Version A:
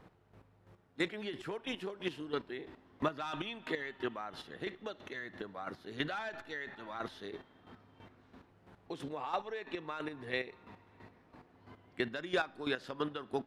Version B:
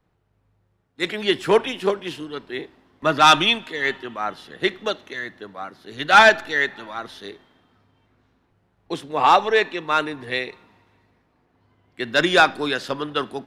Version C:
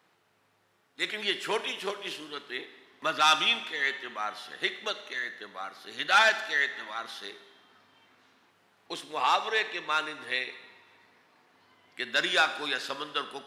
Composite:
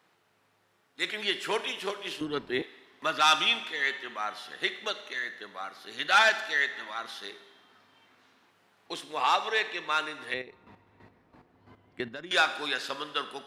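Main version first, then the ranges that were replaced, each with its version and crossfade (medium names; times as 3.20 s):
C
2.21–2.62 s: from B
10.34–12.31 s: from A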